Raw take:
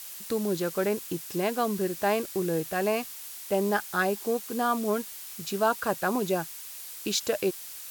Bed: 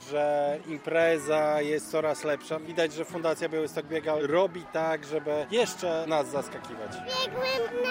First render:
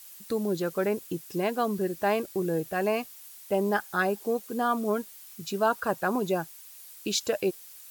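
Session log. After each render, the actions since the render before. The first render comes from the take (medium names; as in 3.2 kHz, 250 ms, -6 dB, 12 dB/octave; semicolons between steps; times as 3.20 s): noise reduction 9 dB, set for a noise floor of -42 dBFS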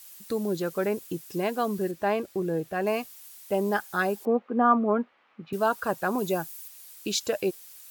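1.91–2.87 s: treble shelf 4.8 kHz -9.5 dB; 4.25–5.53 s: cabinet simulation 170–2400 Hz, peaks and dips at 240 Hz +8 dB, 540 Hz +6 dB, 810 Hz +6 dB, 1.2 kHz +7 dB; 6.18–6.68 s: treble shelf 7.7 kHz +7 dB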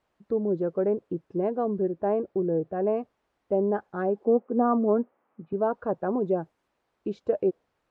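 Bessel low-pass 620 Hz, order 2; dynamic bell 470 Hz, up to +5 dB, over -40 dBFS, Q 1.1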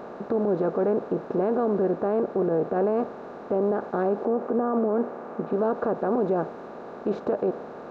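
spectral levelling over time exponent 0.4; peak limiter -16 dBFS, peak gain reduction 8 dB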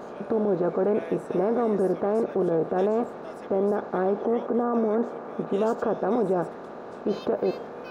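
add bed -16 dB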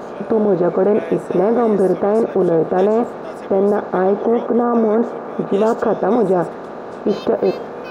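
trim +9 dB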